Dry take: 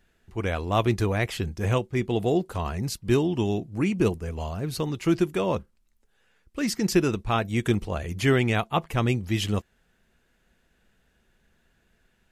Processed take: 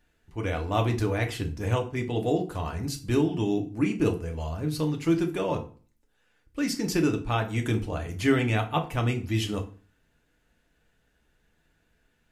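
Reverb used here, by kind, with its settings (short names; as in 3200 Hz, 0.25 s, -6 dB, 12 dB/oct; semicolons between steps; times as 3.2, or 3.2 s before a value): FDN reverb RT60 0.39 s, low-frequency decay 1.25×, high-frequency decay 0.8×, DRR 3 dB; gain -4 dB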